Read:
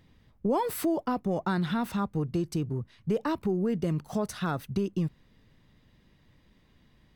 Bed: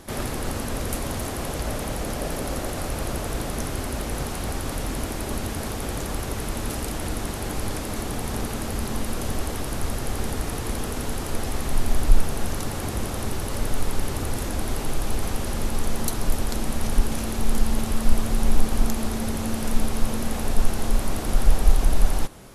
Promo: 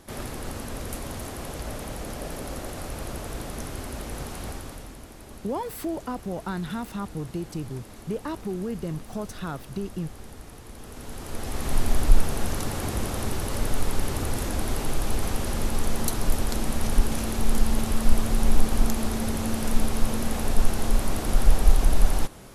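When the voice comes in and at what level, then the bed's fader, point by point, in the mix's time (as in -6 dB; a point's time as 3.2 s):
5.00 s, -3.0 dB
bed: 4.48 s -6 dB
5 s -15.5 dB
10.72 s -15.5 dB
11.73 s -0.5 dB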